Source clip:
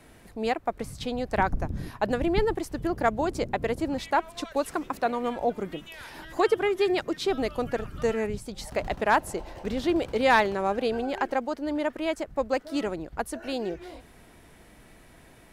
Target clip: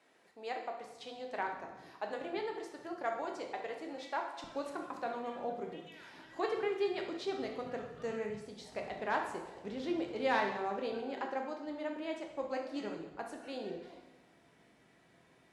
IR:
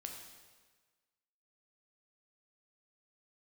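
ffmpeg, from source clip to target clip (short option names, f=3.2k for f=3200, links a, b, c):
-filter_complex "[0:a]asetnsamples=n=441:p=0,asendcmd='4.44 highpass f 140',highpass=400,lowpass=6.8k[a];[1:a]atrim=start_sample=2205,asetrate=66150,aresample=44100[b];[a][b]afir=irnorm=-1:irlink=0,volume=-4dB"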